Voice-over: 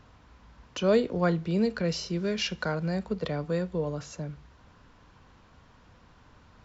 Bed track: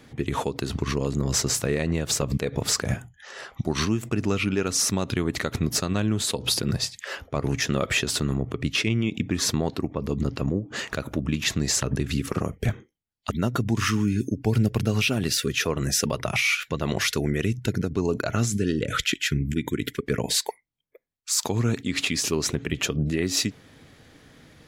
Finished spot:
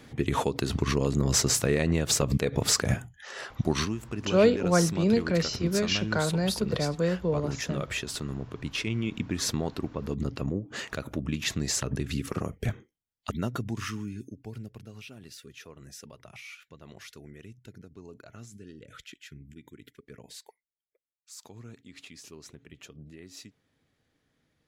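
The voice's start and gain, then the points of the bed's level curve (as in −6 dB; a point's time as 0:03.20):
3.50 s, +2.5 dB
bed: 0:03.73 0 dB
0:03.95 −9 dB
0:08.59 −9 dB
0:09.09 −5 dB
0:13.36 −5 dB
0:14.87 −22.5 dB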